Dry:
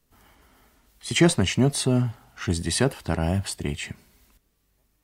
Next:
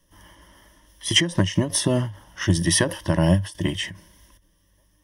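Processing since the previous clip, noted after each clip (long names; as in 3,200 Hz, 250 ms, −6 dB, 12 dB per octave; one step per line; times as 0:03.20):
EQ curve with evenly spaced ripples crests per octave 1.2, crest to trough 14 dB
every ending faded ahead of time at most 150 dB per second
level +4 dB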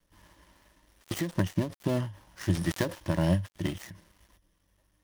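gap after every zero crossing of 0.16 ms
level −7 dB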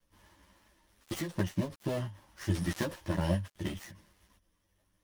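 string-ensemble chorus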